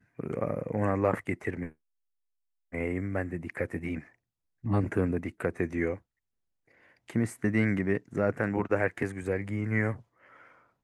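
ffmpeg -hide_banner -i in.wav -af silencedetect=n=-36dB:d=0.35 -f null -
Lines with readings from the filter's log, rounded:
silence_start: 1.68
silence_end: 2.74 | silence_duration: 1.06
silence_start: 4.00
silence_end: 4.64 | silence_duration: 0.65
silence_start: 5.95
silence_end: 7.10 | silence_duration: 1.14
silence_start: 9.96
silence_end: 10.83 | silence_duration: 0.87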